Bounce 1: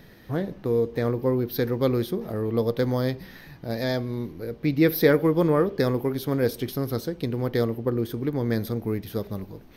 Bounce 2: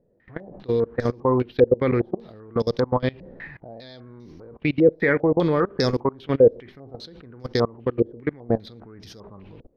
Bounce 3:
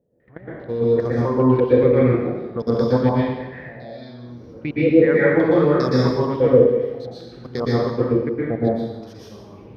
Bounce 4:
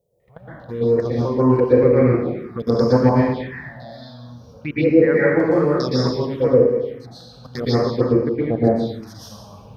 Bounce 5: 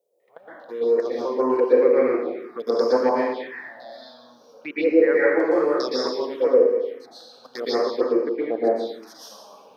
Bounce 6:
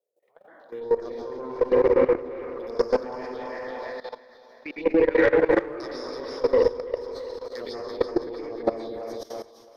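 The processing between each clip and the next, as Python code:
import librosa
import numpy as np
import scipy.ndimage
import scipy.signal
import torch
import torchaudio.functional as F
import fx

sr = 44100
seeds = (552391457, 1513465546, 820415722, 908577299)

y1 = fx.level_steps(x, sr, step_db=24)
y1 = fx.filter_held_lowpass(y1, sr, hz=5.0, low_hz=530.0, high_hz=5500.0)
y1 = y1 * 10.0 ** (4.0 / 20.0)
y2 = scipy.signal.sosfilt(scipy.signal.butter(2, 52.0, 'highpass', fs=sr, output='sos'), y1)
y2 = fx.peak_eq(y2, sr, hz=4000.0, db=-5.0, octaves=2.1)
y2 = fx.rev_plate(y2, sr, seeds[0], rt60_s=1.1, hf_ratio=0.9, predelay_ms=105, drr_db=-7.5)
y2 = y2 * 10.0 ** (-4.0 / 20.0)
y3 = fx.high_shelf(y2, sr, hz=2100.0, db=8.5)
y3 = fx.rider(y3, sr, range_db=10, speed_s=2.0)
y3 = fx.env_phaser(y3, sr, low_hz=270.0, high_hz=3500.0, full_db=-13.0)
y4 = scipy.signal.sosfilt(scipy.signal.butter(4, 330.0, 'highpass', fs=sr, output='sos'), y3)
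y4 = y4 * 10.0 ** (-1.5 / 20.0)
y5 = fx.cheby_harmonics(y4, sr, harmonics=(6,), levels_db=(-24,), full_scale_db=-5.0)
y5 = fx.echo_split(y5, sr, split_hz=470.0, low_ms=241, high_ms=332, feedback_pct=52, wet_db=-5)
y5 = fx.level_steps(y5, sr, step_db=17)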